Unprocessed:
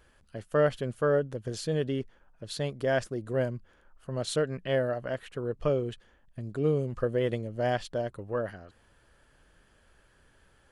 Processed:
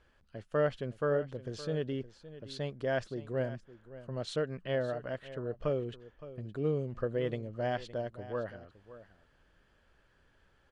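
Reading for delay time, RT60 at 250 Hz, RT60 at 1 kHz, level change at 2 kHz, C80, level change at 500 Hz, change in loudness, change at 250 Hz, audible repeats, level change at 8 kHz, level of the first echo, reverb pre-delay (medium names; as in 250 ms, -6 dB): 566 ms, no reverb, no reverb, -5.0 dB, no reverb, -5.0 dB, -5.0 dB, -5.0 dB, 1, under -10 dB, -15.5 dB, no reverb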